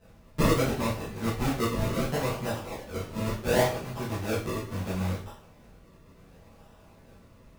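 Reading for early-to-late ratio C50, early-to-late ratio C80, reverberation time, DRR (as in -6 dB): 5.5 dB, 10.5 dB, 0.45 s, -11.0 dB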